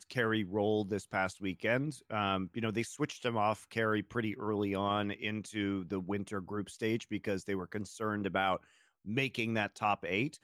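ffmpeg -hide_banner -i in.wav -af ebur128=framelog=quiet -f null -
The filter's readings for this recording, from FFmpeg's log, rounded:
Integrated loudness:
  I:         -34.8 LUFS
  Threshold: -44.9 LUFS
Loudness range:
  LRA:         2.5 LU
  Threshold: -55.3 LUFS
  LRA low:   -36.8 LUFS
  LRA high:  -34.3 LUFS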